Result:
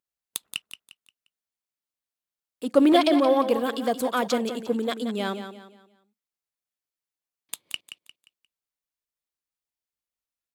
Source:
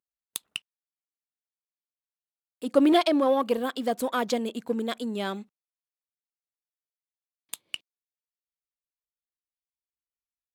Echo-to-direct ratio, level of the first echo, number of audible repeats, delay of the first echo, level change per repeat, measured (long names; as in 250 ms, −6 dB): −9.5 dB, −10.0 dB, 3, 176 ms, −9.0 dB